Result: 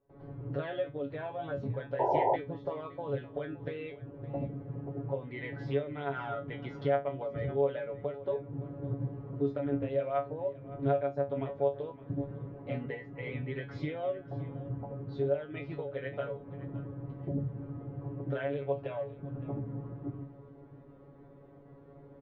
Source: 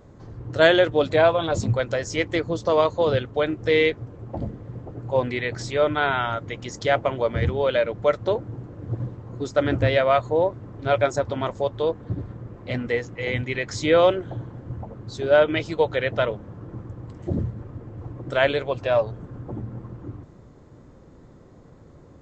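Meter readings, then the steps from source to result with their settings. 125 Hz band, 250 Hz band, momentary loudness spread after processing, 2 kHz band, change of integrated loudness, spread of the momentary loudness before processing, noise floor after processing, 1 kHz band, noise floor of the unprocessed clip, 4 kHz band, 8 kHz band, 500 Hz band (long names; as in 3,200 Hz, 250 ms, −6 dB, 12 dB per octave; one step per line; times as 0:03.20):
−8.0 dB, −9.0 dB, 11 LU, −19.0 dB, −12.5 dB, 18 LU, −54 dBFS, −10.5 dB, −49 dBFS, below −20 dB, can't be measured, −12.0 dB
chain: parametric band 470 Hz +8 dB 2.1 octaves
downward compressor 5 to 1, threshold −24 dBFS, peak gain reduction 17 dB
single-tap delay 565 ms −17.5 dB
noise gate with hold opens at −36 dBFS
low-pass filter 3,100 Hz 24 dB per octave
dynamic equaliser 160 Hz, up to +7 dB, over −44 dBFS, Q 1.1
tuned comb filter 140 Hz, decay 0.21 s, harmonics all, mix 100%
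sound drawn into the spectrogram noise, 0:01.99–0:02.36, 350–1,000 Hz −27 dBFS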